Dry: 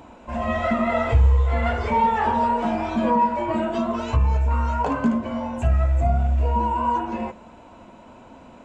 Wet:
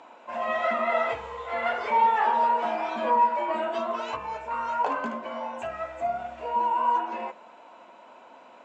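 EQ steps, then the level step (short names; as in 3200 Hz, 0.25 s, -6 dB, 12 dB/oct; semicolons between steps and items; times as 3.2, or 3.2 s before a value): HPF 580 Hz 12 dB/oct; air absorption 85 m; 0.0 dB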